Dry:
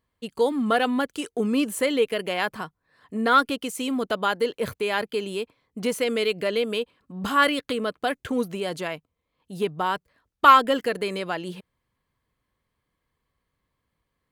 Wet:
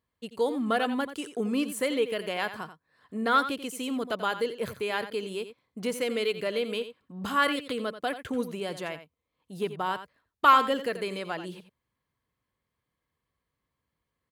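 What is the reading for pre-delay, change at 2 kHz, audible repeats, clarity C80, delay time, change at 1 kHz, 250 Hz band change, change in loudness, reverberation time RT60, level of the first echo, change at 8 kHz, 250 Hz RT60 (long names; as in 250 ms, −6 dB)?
no reverb audible, −5.0 dB, 1, no reverb audible, 87 ms, −4.5 dB, −5.0 dB, −4.5 dB, no reverb audible, −12.0 dB, −4.5 dB, no reverb audible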